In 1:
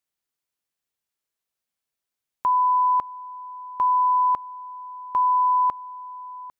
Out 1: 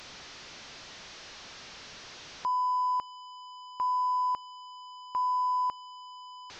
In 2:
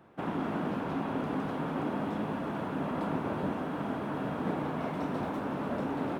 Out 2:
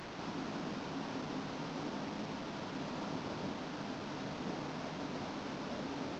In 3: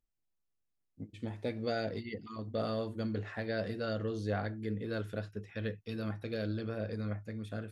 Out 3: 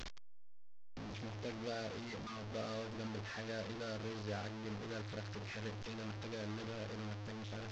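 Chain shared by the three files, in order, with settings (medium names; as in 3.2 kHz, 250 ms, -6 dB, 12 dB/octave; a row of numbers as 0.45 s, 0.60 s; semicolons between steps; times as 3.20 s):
one-bit delta coder 32 kbps, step -31.5 dBFS; trim -8.5 dB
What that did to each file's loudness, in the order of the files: -8.5 LU, -7.5 LU, -7.0 LU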